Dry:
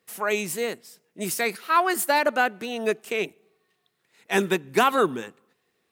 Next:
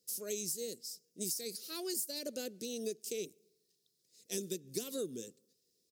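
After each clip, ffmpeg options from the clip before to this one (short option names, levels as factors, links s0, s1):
-af "firequalizer=gain_entry='entry(510,0);entry(820,-29);entry(5000,15);entry(8800,10)':delay=0.05:min_phase=1,acompressor=threshold=0.0501:ratio=6,volume=0.355"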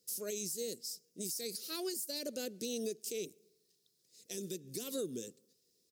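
-af "alimiter=level_in=2.37:limit=0.0631:level=0:latency=1:release=61,volume=0.422,volume=1.33"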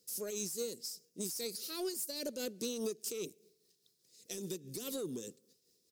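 -af "asoftclip=type=tanh:threshold=0.0251,tremolo=f=4.9:d=0.43,volume=1.5"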